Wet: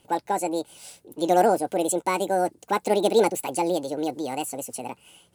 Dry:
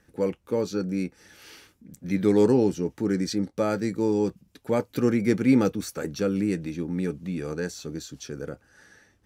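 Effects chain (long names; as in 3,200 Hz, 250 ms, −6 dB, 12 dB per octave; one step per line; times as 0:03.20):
parametric band 5,100 Hz +8 dB 0.97 octaves
wrong playback speed 45 rpm record played at 78 rpm
level +1 dB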